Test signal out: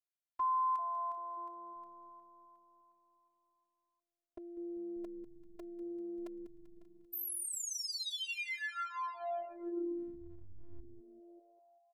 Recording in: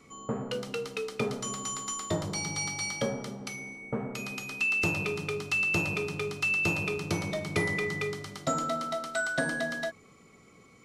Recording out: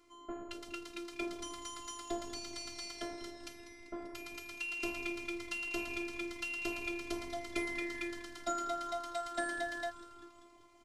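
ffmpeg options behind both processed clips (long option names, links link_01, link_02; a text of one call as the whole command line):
ffmpeg -i in.wav -filter_complex "[0:a]asplit=8[link_01][link_02][link_03][link_04][link_05][link_06][link_07][link_08];[link_02]adelay=195,afreqshift=-140,volume=-13.5dB[link_09];[link_03]adelay=390,afreqshift=-280,volume=-17.4dB[link_10];[link_04]adelay=585,afreqshift=-420,volume=-21.3dB[link_11];[link_05]adelay=780,afreqshift=-560,volume=-25.1dB[link_12];[link_06]adelay=975,afreqshift=-700,volume=-29dB[link_13];[link_07]adelay=1170,afreqshift=-840,volume=-32.9dB[link_14];[link_08]adelay=1365,afreqshift=-980,volume=-36.8dB[link_15];[link_01][link_09][link_10][link_11][link_12][link_13][link_14][link_15]amix=inputs=8:normalize=0,afftfilt=real='hypot(re,im)*cos(PI*b)':imag='0':win_size=512:overlap=0.75,volume=-4.5dB" out.wav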